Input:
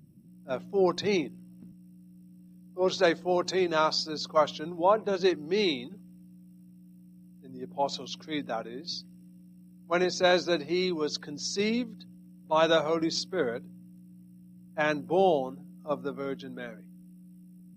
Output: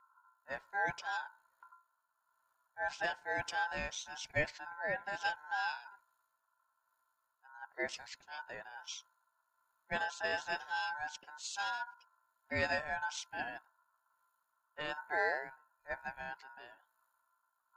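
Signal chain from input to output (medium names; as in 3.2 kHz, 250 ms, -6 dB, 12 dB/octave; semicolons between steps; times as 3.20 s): rotary cabinet horn 1.1 Hz; hum notches 60/120/180/240/300 Hz; ring modulator 1.2 kHz; trim -6 dB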